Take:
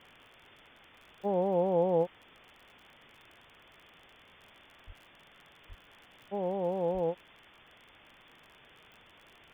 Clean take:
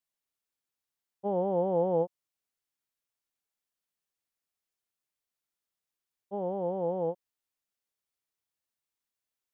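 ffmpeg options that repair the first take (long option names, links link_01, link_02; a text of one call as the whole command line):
ffmpeg -i in.wav -filter_complex "[0:a]adeclick=threshold=4,asplit=3[link_01][link_02][link_03];[link_01]afade=type=out:start_time=4.86:duration=0.02[link_04];[link_02]highpass=frequency=140:width=0.5412,highpass=frequency=140:width=1.3066,afade=type=in:start_time=4.86:duration=0.02,afade=type=out:start_time=4.98:duration=0.02[link_05];[link_03]afade=type=in:start_time=4.98:duration=0.02[link_06];[link_04][link_05][link_06]amix=inputs=3:normalize=0,asplit=3[link_07][link_08][link_09];[link_07]afade=type=out:start_time=5.68:duration=0.02[link_10];[link_08]highpass=frequency=140:width=0.5412,highpass=frequency=140:width=1.3066,afade=type=in:start_time=5.68:duration=0.02,afade=type=out:start_time=5.8:duration=0.02[link_11];[link_09]afade=type=in:start_time=5.8:duration=0.02[link_12];[link_10][link_11][link_12]amix=inputs=3:normalize=0,asplit=3[link_13][link_14][link_15];[link_13]afade=type=out:start_time=6.93:duration=0.02[link_16];[link_14]highpass=frequency=140:width=0.5412,highpass=frequency=140:width=1.3066,afade=type=in:start_time=6.93:duration=0.02,afade=type=out:start_time=7.05:duration=0.02[link_17];[link_15]afade=type=in:start_time=7.05:duration=0.02[link_18];[link_16][link_17][link_18]amix=inputs=3:normalize=0,afwtdn=0.0028" out.wav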